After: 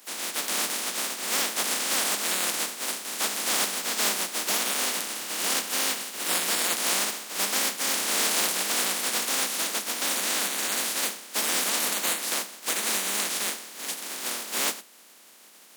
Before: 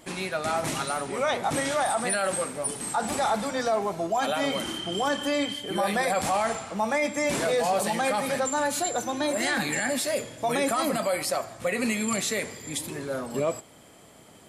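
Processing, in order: spectral contrast reduction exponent 0.11; steep high-pass 200 Hz 96 dB/octave; speed mistake 48 kHz file played as 44.1 kHz

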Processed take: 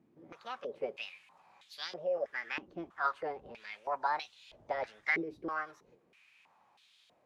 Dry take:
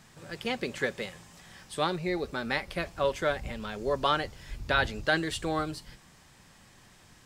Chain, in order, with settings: formant shift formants +5 st; step-sequenced band-pass 3.1 Hz 310–3500 Hz; trim +2 dB

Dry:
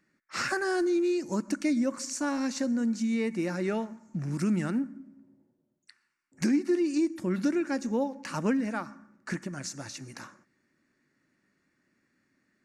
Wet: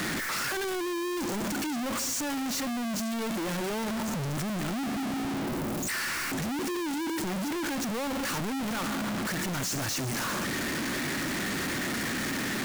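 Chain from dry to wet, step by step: one-bit comparator

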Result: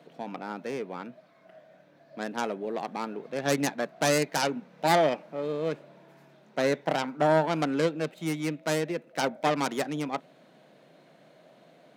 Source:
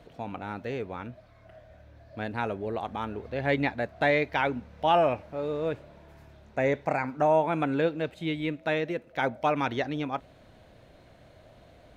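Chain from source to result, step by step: tracing distortion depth 0.41 ms; elliptic high-pass 150 Hz, stop band 40 dB

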